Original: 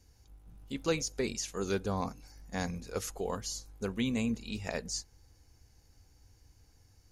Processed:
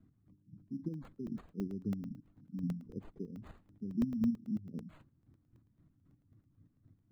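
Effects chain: Bessel high-pass 210 Hz, order 6; square tremolo 3.8 Hz, depth 60%, duty 35%; compression 1.5:1, threshold -49 dBFS, peak gain reduction 7 dB; inverse Chebyshev band-stop 1.1–2.7 kHz, stop band 80 dB; spectral gate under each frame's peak -20 dB strong; treble shelf 8.7 kHz -7 dB; careless resampling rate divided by 8×, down none, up hold; tilt EQ -4.5 dB/octave; crackling interface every 0.11 s, samples 64, zero, from 0.94 s; trim +2.5 dB

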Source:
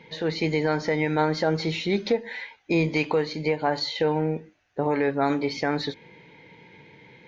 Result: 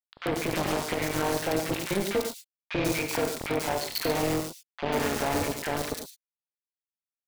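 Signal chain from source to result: local Wiener filter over 15 samples; high-pass 290 Hz 6 dB/octave; hum notches 60/120/180/240/300/360/420/480/540/600 Hz; peak limiter -19 dBFS, peak gain reduction 6.5 dB; AM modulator 200 Hz, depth 40%; bit crusher 5-bit; three bands offset in time mids, lows, highs 40/140 ms, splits 1.2/3.7 kHz; gated-style reverb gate 130 ms rising, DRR 6 dB; 0.54–0.96 s: loudspeaker Doppler distortion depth 0.89 ms; trim +3.5 dB

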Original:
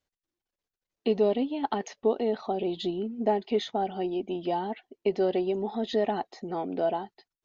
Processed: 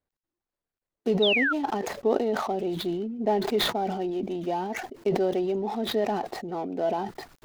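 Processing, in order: median filter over 15 samples; painted sound fall, 1.22–1.53 s, 1.3–3.9 kHz -25 dBFS; decay stretcher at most 41 dB/s

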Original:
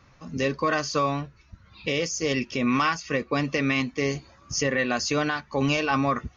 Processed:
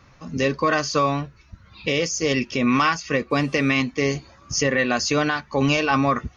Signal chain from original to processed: 3.30–3.70 s: mains buzz 400 Hz, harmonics 27, -58 dBFS -4 dB/octave; trim +4 dB

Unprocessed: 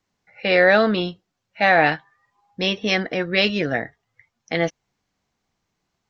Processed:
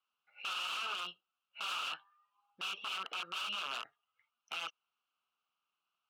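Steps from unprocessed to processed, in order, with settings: integer overflow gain 19 dB; two resonant band-passes 1.9 kHz, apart 1.1 oct; peak limiter -29.5 dBFS, peak gain reduction 7 dB

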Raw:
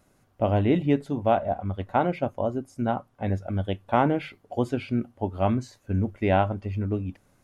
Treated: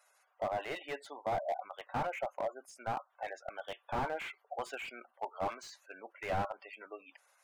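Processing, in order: Bessel high-pass 1 kHz, order 4; spectral gate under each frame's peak -15 dB strong; slew-rate limiter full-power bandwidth 18 Hz; trim +2 dB

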